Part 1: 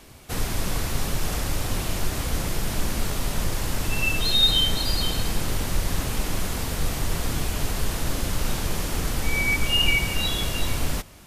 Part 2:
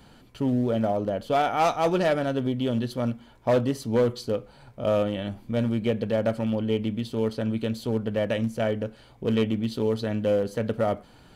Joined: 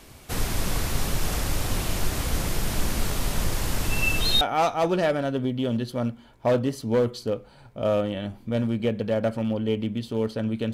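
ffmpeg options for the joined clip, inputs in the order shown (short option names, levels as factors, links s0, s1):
-filter_complex "[0:a]apad=whole_dur=10.73,atrim=end=10.73,atrim=end=4.412[s0];[1:a]atrim=start=1.428:end=7.75[s1];[s0][s1]acrossfade=d=0.004:c1=hsin:c2=hsin"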